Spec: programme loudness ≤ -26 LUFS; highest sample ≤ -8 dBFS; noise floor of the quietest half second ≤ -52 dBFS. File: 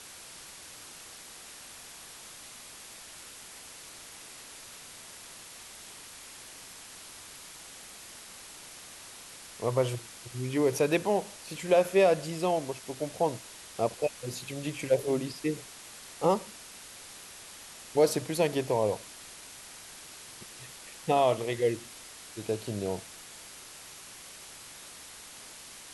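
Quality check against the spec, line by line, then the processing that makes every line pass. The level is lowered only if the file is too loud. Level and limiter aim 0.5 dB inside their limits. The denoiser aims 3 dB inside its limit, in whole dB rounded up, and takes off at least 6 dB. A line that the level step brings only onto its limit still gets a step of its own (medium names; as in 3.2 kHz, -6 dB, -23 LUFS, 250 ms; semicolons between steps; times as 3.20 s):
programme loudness -29.5 LUFS: pass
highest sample -12.0 dBFS: pass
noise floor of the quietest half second -48 dBFS: fail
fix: noise reduction 7 dB, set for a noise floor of -48 dBFS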